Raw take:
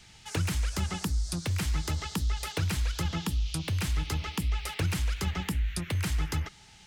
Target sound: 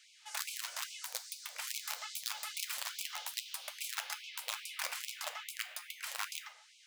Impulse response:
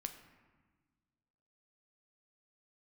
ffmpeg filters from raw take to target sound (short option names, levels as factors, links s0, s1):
-filter_complex "[0:a]asettb=1/sr,asplit=3[s0][s1][s2];[s0]atrim=end=1.644[s3];[s1]atrim=start=1.64:end=3.88,asetpts=PTS-STARTPTS,afade=t=in:d=0.004:c=qsin,afade=t=out:st=2.236:d=0.004:c=qsin,highshelf=f=9200:g=6.5[s4];[s2]atrim=start=3.876[s5];[s3][s4]acrossfade=d=0.004:c1=hsin:c2=qsin[s6];[s6][s5]acrossfade=d=0.004:c1=qsin:c2=hsin,aeval=exprs='(mod(12.6*val(0)+1,2)-1)/12.6':c=same[s7];[1:a]atrim=start_sample=2205,atrim=end_sample=6615[s8];[s7][s8]afir=irnorm=-1:irlink=0,afftfilt=real='re*gte(b*sr/1024,470*pow(2200/470,0.5+0.5*sin(2*PI*2.4*pts/sr)))':imag='im*gte(b*sr/1024,470*pow(2200/470,0.5+0.5*sin(2*PI*2.4*pts/sr)))':win_size=1024:overlap=0.75,volume=0.708"